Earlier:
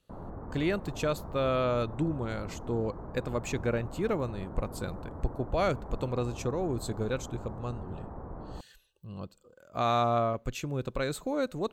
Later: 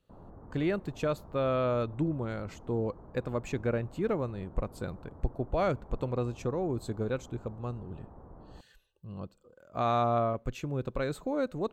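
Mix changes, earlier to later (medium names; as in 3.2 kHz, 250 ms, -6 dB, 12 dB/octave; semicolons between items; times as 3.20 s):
background -8.5 dB; master: add treble shelf 2.7 kHz -9.5 dB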